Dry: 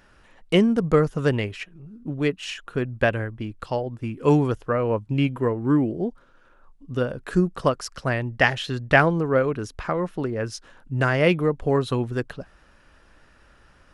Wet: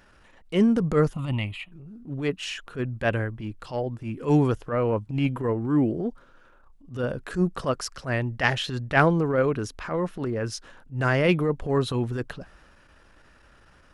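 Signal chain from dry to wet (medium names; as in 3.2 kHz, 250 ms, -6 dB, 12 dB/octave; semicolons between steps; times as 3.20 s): transient shaper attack -11 dB, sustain +2 dB; 1.13–1.72 s: static phaser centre 1.6 kHz, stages 6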